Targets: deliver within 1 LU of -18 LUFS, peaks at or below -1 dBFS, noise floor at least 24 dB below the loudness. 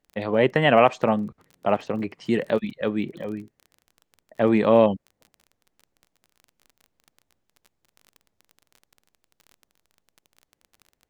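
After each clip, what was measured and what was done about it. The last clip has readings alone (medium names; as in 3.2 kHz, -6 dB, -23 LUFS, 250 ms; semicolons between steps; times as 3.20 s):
tick rate 24 per s; loudness -22.5 LUFS; peak level -3.0 dBFS; loudness target -18.0 LUFS
-> de-click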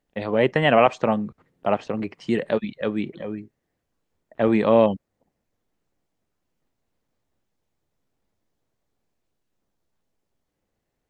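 tick rate 0 per s; loudness -22.0 LUFS; peak level -3.0 dBFS; loudness target -18.0 LUFS
-> trim +4 dB; peak limiter -1 dBFS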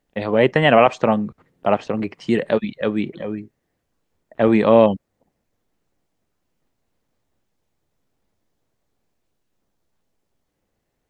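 loudness -18.5 LUFS; peak level -1.0 dBFS; noise floor -75 dBFS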